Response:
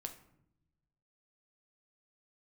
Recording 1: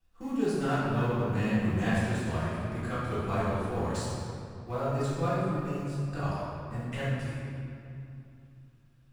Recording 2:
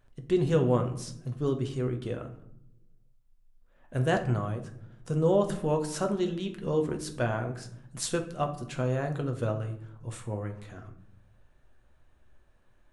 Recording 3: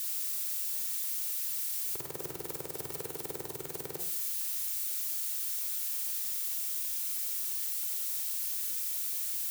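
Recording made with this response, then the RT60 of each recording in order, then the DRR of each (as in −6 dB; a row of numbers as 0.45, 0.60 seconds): 2; 2.7, 0.75, 0.50 seconds; −12.5, 4.5, 3.5 decibels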